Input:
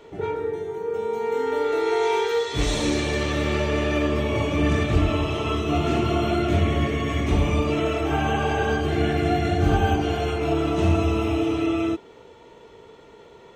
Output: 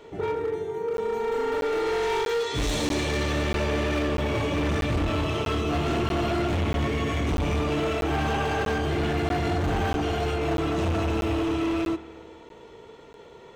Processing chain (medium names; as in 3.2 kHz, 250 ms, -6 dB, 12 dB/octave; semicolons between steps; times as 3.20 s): hard clipper -22.5 dBFS, distortion -9 dB; spring tank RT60 2.3 s, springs 55 ms, chirp 50 ms, DRR 15 dB; crackling interface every 0.64 s, samples 512, zero, from 0.97 s